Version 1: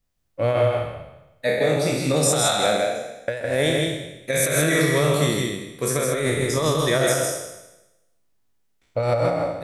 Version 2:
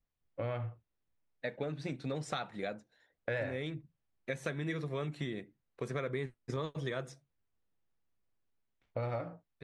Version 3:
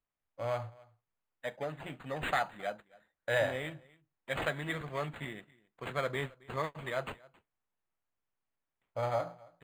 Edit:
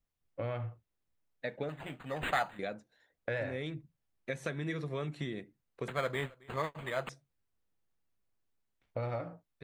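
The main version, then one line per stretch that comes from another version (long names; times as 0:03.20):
2
0:01.69–0:02.59: punch in from 3
0:05.88–0:07.09: punch in from 3
not used: 1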